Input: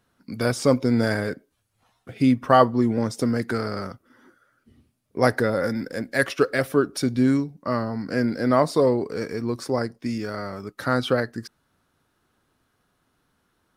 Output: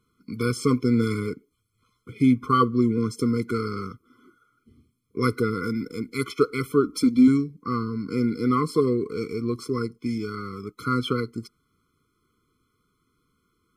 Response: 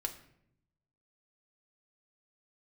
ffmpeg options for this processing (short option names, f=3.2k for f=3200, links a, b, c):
-filter_complex "[0:a]asettb=1/sr,asplit=3[a][b][c];[a]atrim=end=6.844[d];[b]atrim=start=6.84:end=7.28,asetpts=PTS-STARTPTS,afade=t=in:d=0.004:c=qsin,afade=t=out:st=0.436:d=0.004:c=qsin,aecho=1:1:3.8:0.84,atrim=end_sample=19404[e];[c]atrim=start=7.276[f];[d][e]acrossfade=d=0.004:c1=hsin:c2=qsin[g];[g][f]acrossfade=d=0.004:c1=qsin:c2=hsin,afftfilt=real='re*eq(mod(floor(b*sr/1024/500),2),0)':imag='im*eq(mod(floor(b*sr/1024/500),2),0)':win_size=1024:overlap=0.75"